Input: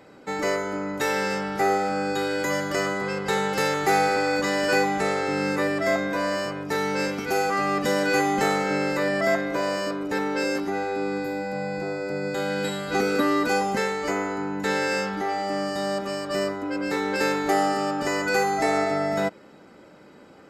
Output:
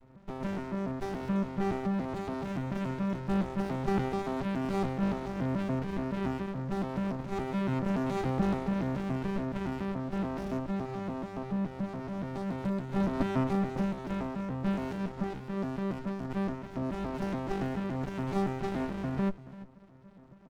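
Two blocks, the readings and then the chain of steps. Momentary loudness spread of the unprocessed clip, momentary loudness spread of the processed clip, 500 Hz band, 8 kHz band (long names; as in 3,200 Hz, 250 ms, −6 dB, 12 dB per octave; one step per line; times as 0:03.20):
6 LU, 6 LU, −11.5 dB, below −20 dB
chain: vocoder with an arpeggio as carrier bare fifth, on C3, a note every 142 ms
single-tap delay 340 ms −16 dB
windowed peak hold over 65 samples
level −3.5 dB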